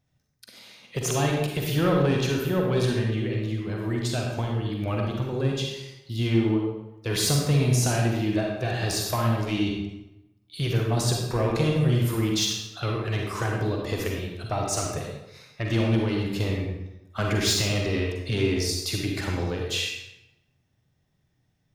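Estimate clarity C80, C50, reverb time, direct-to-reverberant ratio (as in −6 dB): 3.5 dB, 1.0 dB, 0.90 s, −0.5 dB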